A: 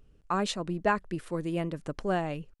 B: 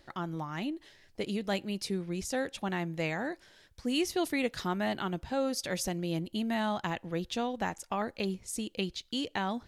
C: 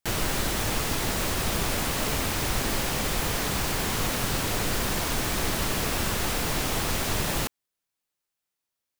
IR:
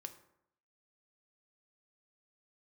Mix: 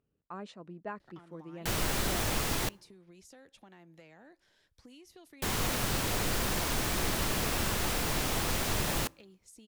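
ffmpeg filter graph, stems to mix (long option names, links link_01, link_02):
-filter_complex "[0:a]highpass=110,aemphasis=mode=reproduction:type=75kf,volume=-13.5dB[link_01];[1:a]acrossover=split=210|770[link_02][link_03][link_04];[link_02]acompressor=threshold=-48dB:ratio=4[link_05];[link_03]acompressor=threshold=-35dB:ratio=4[link_06];[link_04]acompressor=threshold=-38dB:ratio=4[link_07];[link_05][link_06][link_07]amix=inputs=3:normalize=0,asoftclip=type=tanh:threshold=-25dB,acompressor=threshold=-43dB:ratio=4,adelay=1000,volume=-10.5dB[link_08];[2:a]adelay=1600,volume=-5dB,asplit=3[link_09][link_10][link_11];[link_09]atrim=end=2.69,asetpts=PTS-STARTPTS,afade=type=out:start_time=2.686:duration=0.004:curve=hsin[link_12];[link_10]atrim=start=2.69:end=5.42,asetpts=PTS-STARTPTS,volume=0[link_13];[link_11]atrim=start=5.42,asetpts=PTS-STARTPTS,afade=type=in:duration=0.004:curve=hsin[link_14];[link_12][link_13][link_14]concat=n=3:v=0:a=1,asplit=2[link_15][link_16];[link_16]volume=-11.5dB[link_17];[3:a]atrim=start_sample=2205[link_18];[link_17][link_18]afir=irnorm=-1:irlink=0[link_19];[link_01][link_08][link_15][link_19]amix=inputs=4:normalize=0"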